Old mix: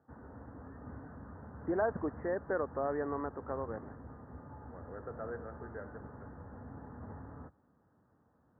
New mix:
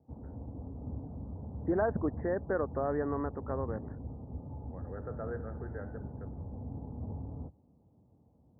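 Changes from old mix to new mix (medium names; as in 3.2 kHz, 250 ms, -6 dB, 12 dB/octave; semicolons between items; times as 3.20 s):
background: add steep low-pass 870 Hz 36 dB/octave; master: add bass shelf 240 Hz +10.5 dB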